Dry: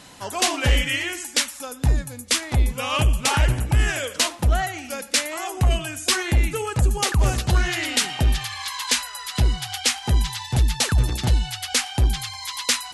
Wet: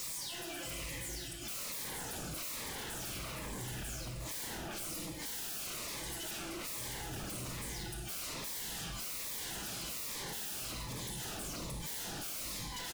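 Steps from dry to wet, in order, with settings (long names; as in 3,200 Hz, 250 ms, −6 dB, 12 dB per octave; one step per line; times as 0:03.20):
every frequency bin delayed by itself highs early, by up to 352 ms
mains-hum notches 50/100/150/200/250/300/350/400/450 Hz
gate with flip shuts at −18 dBFS, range −38 dB
high-shelf EQ 6,900 Hz +7 dB
comb filter 6 ms, depth 76%
reversed playback
upward compression, threshold −25 dBFS
reversed playback
bit-depth reduction 8 bits, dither none
delay that swaps between a low-pass and a high-pass 313 ms, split 1,500 Hz, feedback 67%, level −7 dB
rectangular room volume 1,600 cubic metres, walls mixed, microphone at 2.5 metres
wave folding −34 dBFS
phaser whose notches keep moving one way falling 1.2 Hz
level −2 dB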